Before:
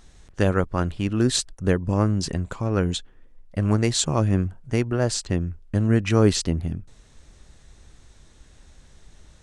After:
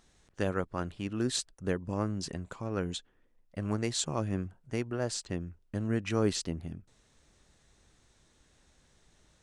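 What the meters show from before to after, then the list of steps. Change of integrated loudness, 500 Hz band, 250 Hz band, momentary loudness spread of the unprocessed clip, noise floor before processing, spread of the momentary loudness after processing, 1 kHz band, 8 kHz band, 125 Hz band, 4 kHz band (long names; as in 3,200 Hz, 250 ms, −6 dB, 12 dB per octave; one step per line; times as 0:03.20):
−10.5 dB, −9.5 dB, −10.5 dB, 8 LU, −53 dBFS, 9 LU, −9.0 dB, −9.0 dB, −13.5 dB, −9.0 dB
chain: low-shelf EQ 84 Hz −12 dB
level −9 dB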